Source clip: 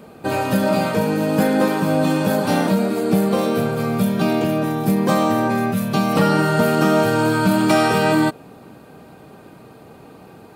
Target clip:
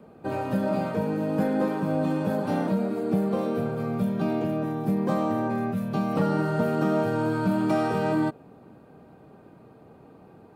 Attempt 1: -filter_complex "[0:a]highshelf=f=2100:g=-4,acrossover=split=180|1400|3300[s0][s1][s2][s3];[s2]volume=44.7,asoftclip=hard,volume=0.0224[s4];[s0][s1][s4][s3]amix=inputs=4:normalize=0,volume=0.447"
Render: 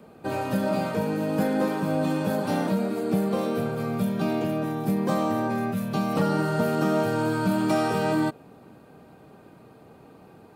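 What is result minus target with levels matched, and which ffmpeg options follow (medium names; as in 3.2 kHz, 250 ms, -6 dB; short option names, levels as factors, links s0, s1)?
4 kHz band +6.0 dB
-filter_complex "[0:a]highshelf=f=2100:g=-13.5,acrossover=split=180|1400|3300[s0][s1][s2][s3];[s2]volume=44.7,asoftclip=hard,volume=0.0224[s4];[s0][s1][s4][s3]amix=inputs=4:normalize=0,volume=0.447"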